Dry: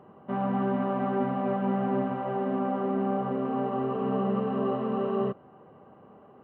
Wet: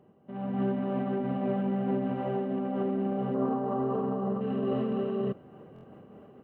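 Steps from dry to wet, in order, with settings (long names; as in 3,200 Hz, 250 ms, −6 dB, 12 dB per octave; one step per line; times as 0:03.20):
parametric band 1,100 Hz −11 dB 1.3 octaves, from 0:03.34 2,500 Hz, from 0:04.41 980 Hz
brickwall limiter −27.5 dBFS, peak gain reduction 9.5 dB
automatic gain control gain up to 12.5 dB
buffer that repeats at 0:05.74, samples 1,024, times 3
amplitude modulation by smooth noise, depth 50%
level −4.5 dB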